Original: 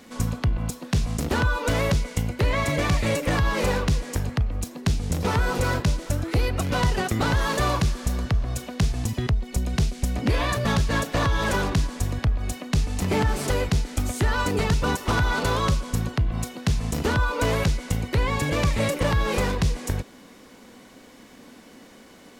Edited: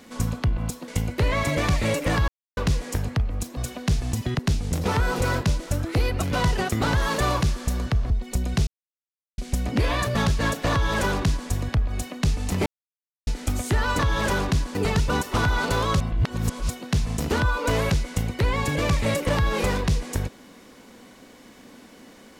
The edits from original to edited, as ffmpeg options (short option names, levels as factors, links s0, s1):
-filter_complex "[0:a]asplit=14[s0][s1][s2][s3][s4][s5][s6][s7][s8][s9][s10][s11][s12][s13];[s0]atrim=end=0.882[s14];[s1]atrim=start=2.088:end=3.49,asetpts=PTS-STARTPTS,afade=t=out:st=1.398:d=0.004:c=hsin[s15];[s2]atrim=start=3.49:end=3.78,asetpts=PTS-STARTPTS,volume=0[s16];[s3]atrim=start=3.78:end=4.782,asetpts=PTS-STARTPTS,afade=t=in:d=0.004:c=hsin[s17];[s4]atrim=start=8.488:end=9.312[s18];[s5]atrim=start=4.778:end=8.492[s19];[s6]atrim=start=9.308:end=9.88,asetpts=PTS-STARTPTS,afade=t=out:st=0.568:d=0.004:c=hsin,apad=pad_dur=0.71[s20];[s7]atrim=start=9.88:end=13.16,asetpts=PTS-STARTPTS,afade=t=in:d=0.004:c=hsin,afade=t=out:st=3.276:d=0.004:c=hsin[s21];[s8]atrim=start=13.16:end=13.77,asetpts=PTS-STARTPTS,volume=0[s22];[s9]atrim=start=13.77:end=14.492,asetpts=PTS-STARTPTS,afade=t=in:d=0.004:c=hsin[s23];[s10]atrim=start=11.218:end=11.982[s24];[s11]atrim=start=14.488:end=15.742[s25];[s12]atrim=start=15.738:end=16.432,asetpts=PTS-STARTPTS,areverse[s26];[s13]atrim=start=16.428[s27];[s15][s16][s17]concat=n=3:v=0:a=1[s28];[s14][s28]acrossfade=d=0.004:c1=hsin:c2=hsin[s29];[s29][s18]acrossfade=d=0.004:c1=hsin:c2=hsin[s30];[s30][s19]acrossfade=d=0.004:c1=hsin:c2=hsin[s31];[s20][s21][s22][s23]concat=n=4:v=0:a=1[s32];[s31][s32]acrossfade=d=0.004:c1=hsin:c2=hsin[s33];[s33][s24]acrossfade=d=0.004:c1=hsin:c2=hsin[s34];[s34][s25]acrossfade=d=0.004:c1=hsin:c2=hsin[s35];[s35][s26]acrossfade=d=0.004:c1=hsin:c2=hsin[s36];[s36][s27]acrossfade=d=0.004:c1=hsin:c2=hsin"